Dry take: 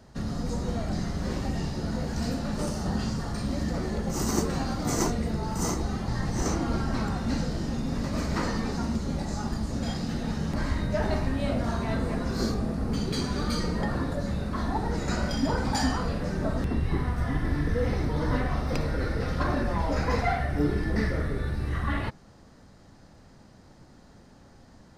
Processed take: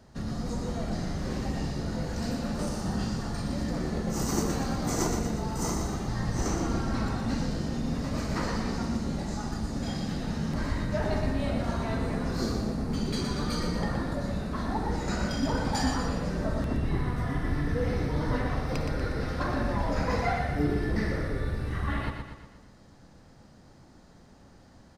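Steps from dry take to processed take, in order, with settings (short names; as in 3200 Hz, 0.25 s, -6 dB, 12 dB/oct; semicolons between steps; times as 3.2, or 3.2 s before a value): feedback echo 0.12 s, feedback 51%, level -6 dB; gain -2.5 dB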